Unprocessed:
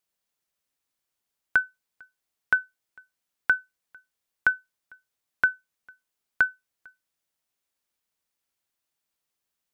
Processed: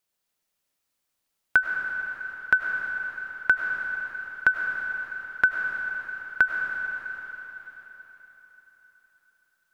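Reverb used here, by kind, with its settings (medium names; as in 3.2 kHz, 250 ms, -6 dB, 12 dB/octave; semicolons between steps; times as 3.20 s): algorithmic reverb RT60 4.2 s, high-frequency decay 1×, pre-delay 60 ms, DRR 1.5 dB; trim +2 dB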